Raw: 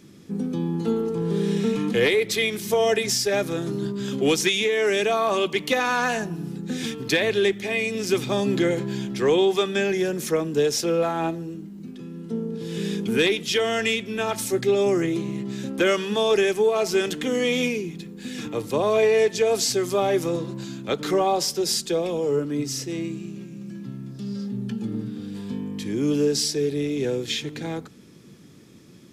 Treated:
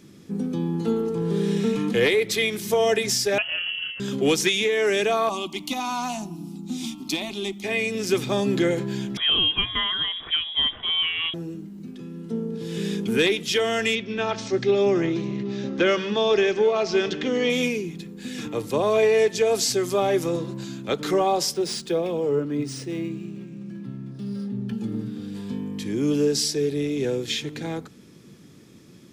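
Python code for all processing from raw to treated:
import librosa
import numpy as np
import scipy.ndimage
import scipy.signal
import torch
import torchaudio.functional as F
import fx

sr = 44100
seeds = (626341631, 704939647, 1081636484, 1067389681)

y = fx.chain(x, sr, fx.peak_eq(hz=450.0, db=-4.5, octaves=0.37),
    fx.hum_notches(base_hz=50, count=4),
    fx.freq_invert(carrier_hz=3100), at=(3.38, 4.0))
y = fx.chain(y, sr, fx.peak_eq(hz=550.0, db=-10.5, octaves=0.45),
    fx.fixed_phaser(hz=450.0, stages=6), at=(5.29, 7.64))
y = fx.chain(y, sr, fx.highpass(hz=370.0, slope=6),
    fx.freq_invert(carrier_hz=3600), at=(9.17, 11.34))
y = fx.chain(y, sr, fx.steep_lowpass(hz=5900.0, slope=36),
    fx.echo_multitap(ms=(150, 769), db=(-18.0, -19.5)), at=(13.95, 17.5))
y = fx.chain(y, sr, fx.highpass(hz=44.0, slope=12),
    fx.high_shelf(hz=6100.0, db=-8.0),
    fx.resample_linear(factor=3), at=(21.54, 24.73))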